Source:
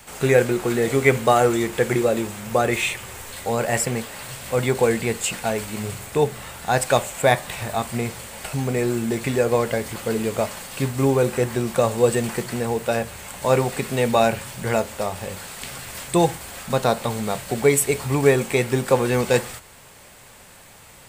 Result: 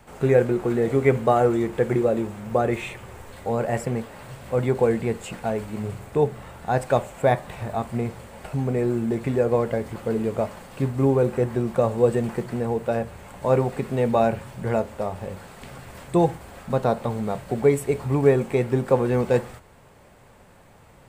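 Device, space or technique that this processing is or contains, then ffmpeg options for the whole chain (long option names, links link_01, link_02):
through cloth: -af "highshelf=frequency=1900:gain=-17"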